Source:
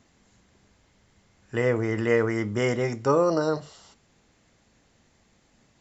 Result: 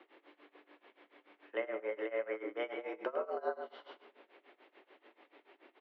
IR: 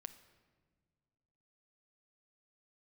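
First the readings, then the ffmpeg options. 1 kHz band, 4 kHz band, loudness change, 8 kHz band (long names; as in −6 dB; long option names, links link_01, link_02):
−12.0 dB, −13.5 dB, −14.5 dB, can't be measured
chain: -filter_complex "[0:a]acompressor=threshold=-37dB:ratio=10,asplit=2[link_01][link_02];[link_02]adelay=105,volume=-8dB,highshelf=frequency=4000:gain=-2.36[link_03];[link_01][link_03]amix=inputs=2:normalize=0[link_04];[1:a]atrim=start_sample=2205[link_05];[link_04][link_05]afir=irnorm=-1:irlink=0,tremolo=f=6.9:d=0.91,highpass=frequency=240:width_type=q:width=0.5412,highpass=frequency=240:width_type=q:width=1.307,lowpass=frequency=3200:width_type=q:width=0.5176,lowpass=frequency=3200:width_type=q:width=0.7071,lowpass=frequency=3200:width_type=q:width=1.932,afreqshift=95,volume=11.5dB"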